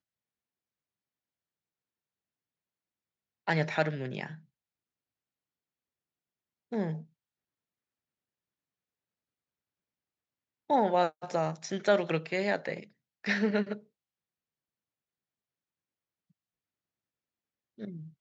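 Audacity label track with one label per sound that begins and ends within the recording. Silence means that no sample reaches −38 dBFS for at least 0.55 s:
3.480000	4.340000	sound
6.720000	7.010000	sound
10.700000	13.770000	sound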